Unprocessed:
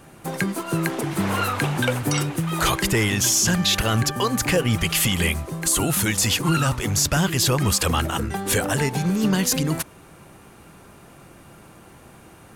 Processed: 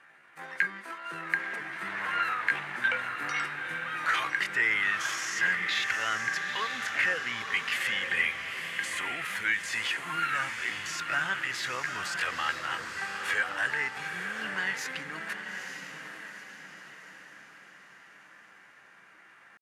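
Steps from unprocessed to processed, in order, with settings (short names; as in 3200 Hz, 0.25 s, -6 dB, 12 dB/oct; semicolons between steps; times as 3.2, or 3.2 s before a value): tempo 0.64×; band-pass 1800 Hz, Q 3.6; on a send: diffused feedback echo 0.906 s, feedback 46%, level -6 dB; on the sum: gain +3 dB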